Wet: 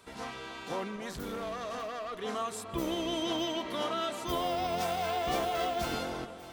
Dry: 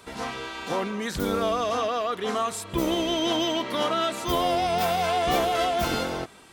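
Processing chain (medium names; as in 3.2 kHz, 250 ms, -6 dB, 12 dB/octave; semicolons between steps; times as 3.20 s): 0.96–2.17 s: valve stage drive 25 dB, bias 0.45; echo whose repeats swap between lows and highs 299 ms, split 1.4 kHz, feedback 60%, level -11 dB; 4.37–5.93 s: careless resampling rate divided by 2×, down none, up hold; trim -8 dB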